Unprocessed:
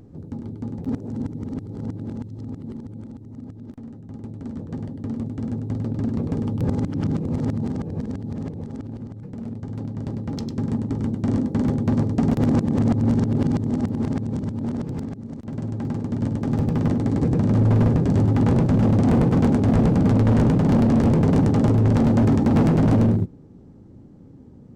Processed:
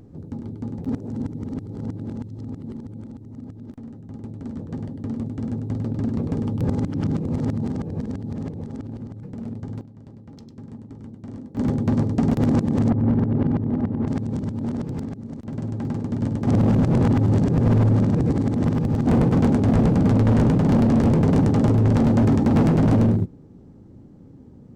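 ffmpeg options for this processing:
-filter_complex "[0:a]asplit=3[a][b][c];[a]afade=t=out:st=12.89:d=0.02[d];[b]lowpass=2.1k,afade=t=in:st=12.89:d=0.02,afade=t=out:st=14.06:d=0.02[e];[c]afade=t=in:st=14.06:d=0.02[f];[d][e][f]amix=inputs=3:normalize=0,asplit=5[g][h][i][j][k];[g]atrim=end=9.81,asetpts=PTS-STARTPTS,afade=t=out:st=9.57:d=0.24:c=log:silence=0.188365[l];[h]atrim=start=9.81:end=11.57,asetpts=PTS-STARTPTS,volume=-14.5dB[m];[i]atrim=start=11.57:end=16.472,asetpts=PTS-STARTPTS,afade=t=in:d=0.24:c=log:silence=0.188365[n];[j]atrim=start=16.468:end=19.072,asetpts=PTS-STARTPTS,areverse[o];[k]atrim=start=19.068[p];[l][m][n]concat=n=3:v=0:a=1[q];[q][o]acrossfade=d=0.004:c1=hsin:c2=hsin[r];[r][p]acrossfade=d=0.004:c1=hsin:c2=hsin"

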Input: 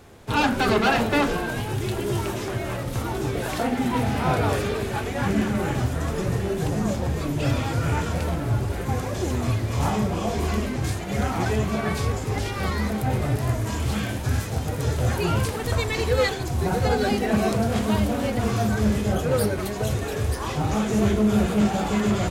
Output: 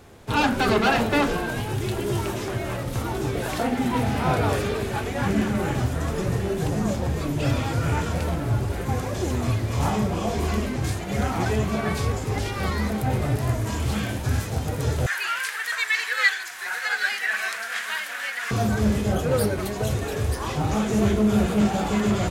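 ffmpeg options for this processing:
-filter_complex "[0:a]asettb=1/sr,asplit=3[a][b][c];[a]atrim=end=15.064[d];[b]atrim=start=15.06:end=18.51,asetpts=PTS-STARTPTS,afade=t=in:d=0.004:c=qsin,afade=t=out:st=3.446:d=0.004:c=qsin,highpass=f=1.7k:t=q:w=4[e];[c]atrim=start=18.506[f];[d][e]acrossfade=d=0.004:c1=hsin:c2=qsin[g];[g][f]acrossfade=d=0.004:c1=qsin:c2=hsin"

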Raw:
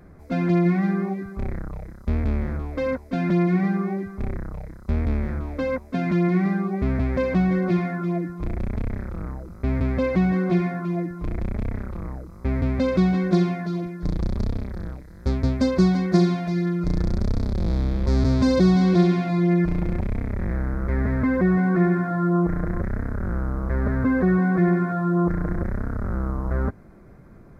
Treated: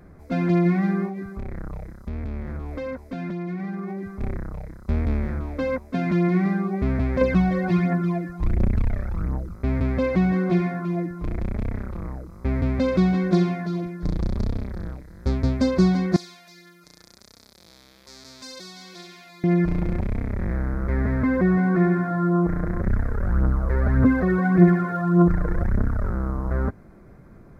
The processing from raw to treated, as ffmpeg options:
-filter_complex "[0:a]asettb=1/sr,asplit=3[a][b][c];[a]atrim=end=1.064[d];[b]atrim=start=1.06:end=4.21,asetpts=PTS-STARTPTS,afade=t=in:d=0.004:c=qsin,afade=t=out:st=3.146:d=0.004:c=qsin,acompressor=threshold=-27dB:ratio=6:attack=3.2:release=140:knee=1:detection=peak[e];[c]atrim=start=4.206[f];[d][e]acrossfade=d=0.004:c1=hsin:c2=qsin[g];[g][f]acrossfade=d=0.004:c1=qsin:c2=hsin,asettb=1/sr,asplit=3[h][i][j];[h]atrim=end=7.214[k];[i]atrim=start=7.21:end=9.55,asetpts=PTS-STARTPTS,afade=t=in:d=0.004:c=qsin,afade=t=out:st=2.336:d=0.004:c=qsin,aphaser=in_gain=1:out_gain=1:delay=1.8:decay=0.56:speed=1.4:type=triangular[l];[j]atrim=start=9.546[m];[k][l]acrossfade=d=0.004:c1=hsin:c2=qsin[n];[n][m]acrossfade=d=0.004:c1=qsin:c2=hsin,asettb=1/sr,asplit=3[o][p][q];[o]atrim=end=16.164[r];[p]atrim=start=16.16:end=19.44,asetpts=PTS-STARTPTS,afade=t=in:d=0.004:c=qsin,afade=t=out:st=3.276:d=0.004:c=qsin,aderivative[s];[q]atrim=start=19.436[t];[r][s]acrossfade=d=0.004:c1=hsin:c2=qsin[u];[u][t]acrossfade=d=0.004:c1=qsin:c2=hsin,asettb=1/sr,asplit=3[v][w][x];[v]atrim=end=22.864[y];[w]atrim=start=22.86:end=26.1,asetpts=PTS-STARTPTS,afade=t=in:d=0.004:c=qsin,afade=t=out:st=3.236:d=0.004:c=qsin,aphaser=in_gain=1:out_gain=1:delay=2.4:decay=0.53:speed=1.7:type=triangular[z];[x]atrim=start=26.096[aa];[y][z]acrossfade=d=0.004:c1=hsin:c2=qsin[ab];[ab][aa]acrossfade=d=0.004:c1=qsin:c2=hsin"

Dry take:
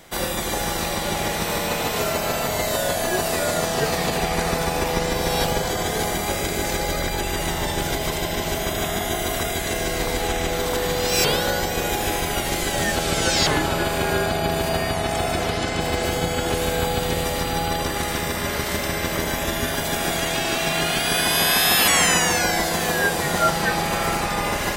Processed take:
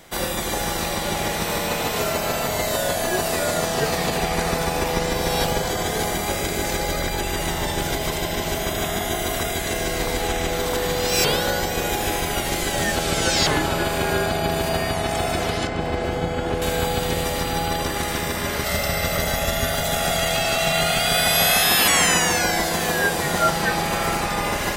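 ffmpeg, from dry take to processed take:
-filter_complex "[0:a]asettb=1/sr,asplit=3[a][b][c];[a]atrim=end=15.674[d];[b]atrim=start=15.67:end=16.62,asetpts=PTS-STARTPTS,afade=t=in:d=0.004:c=qsin,afade=t=out:st=0.946:d=0.004:c=qsin,lowpass=f=1.6k:p=1[e];[c]atrim=start=16.616[f];[d][e]acrossfade=d=0.004:c1=hsin:c2=qsin[g];[g][f]acrossfade=d=0.004:c1=qsin:c2=hsin,asettb=1/sr,asplit=3[h][i][j];[h]atrim=end=18.644[k];[i]atrim=start=18.64:end=21.63,asetpts=PTS-STARTPTS,afade=t=in:d=0.004:c=qsin,afade=t=out:st=2.986:d=0.004:c=qsin,aecho=1:1:1.5:0.64,atrim=end_sample=131859[l];[j]atrim=start=21.626[m];[k][l]acrossfade=d=0.004:c1=hsin:c2=qsin[n];[n][m]acrossfade=d=0.004:c1=qsin:c2=hsin"

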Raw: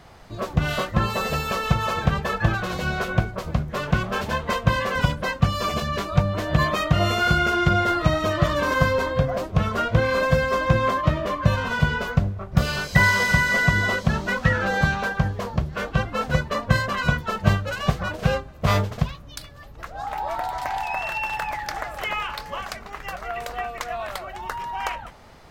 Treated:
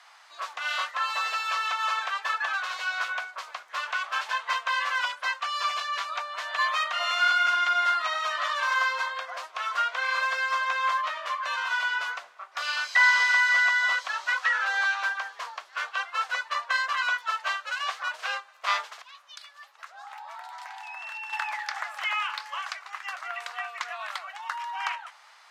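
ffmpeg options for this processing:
-filter_complex "[0:a]asettb=1/sr,asplit=3[a][b][c];[a]atrim=end=18.984[d];[b]atrim=start=18.98:end=21.33,asetpts=PTS-STARTPTS,afade=t=in:d=0.004:c=qsin,afade=t=out:st=2.346:d=0.004:c=qsin,acompressor=threshold=-37dB:ratio=2.5:attack=3.2:release=140:knee=1:detection=peak[e];[c]atrim=start=21.326[f];[d][e]acrossfade=d=0.004:c1=hsin:c2=qsin[g];[g][f]acrossfade=d=0.004:c1=qsin:c2=hsin,lowpass=9.8k,acrossover=split=6000[h][i];[i]acompressor=threshold=-51dB:ratio=4:attack=1:release=60[j];[h][j]amix=inputs=2:normalize=0,highpass=f=970:w=0.5412,highpass=f=970:w=1.3066"

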